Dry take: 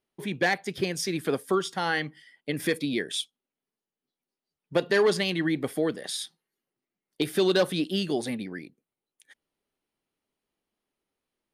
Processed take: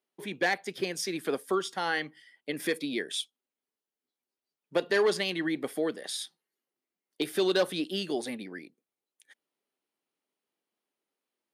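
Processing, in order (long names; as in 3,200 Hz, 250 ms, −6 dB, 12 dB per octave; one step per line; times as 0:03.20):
high-pass filter 250 Hz 12 dB per octave
level −2.5 dB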